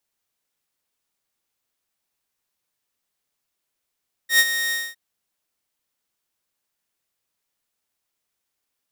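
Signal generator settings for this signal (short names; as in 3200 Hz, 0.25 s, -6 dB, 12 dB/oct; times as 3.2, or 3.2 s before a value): ADSR saw 1860 Hz, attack 0.102 s, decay 48 ms, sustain -10.5 dB, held 0.43 s, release 0.229 s -8.5 dBFS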